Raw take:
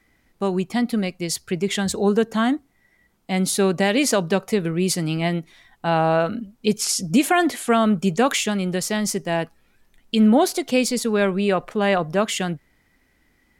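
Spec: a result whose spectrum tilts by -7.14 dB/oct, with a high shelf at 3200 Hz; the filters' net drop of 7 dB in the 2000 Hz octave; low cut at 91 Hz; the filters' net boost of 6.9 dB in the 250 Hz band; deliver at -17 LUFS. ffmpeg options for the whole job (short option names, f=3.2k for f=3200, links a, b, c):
-af "highpass=91,equalizer=f=250:t=o:g=9,equalizer=f=2k:t=o:g=-7.5,highshelf=f=3.2k:g=-5.5"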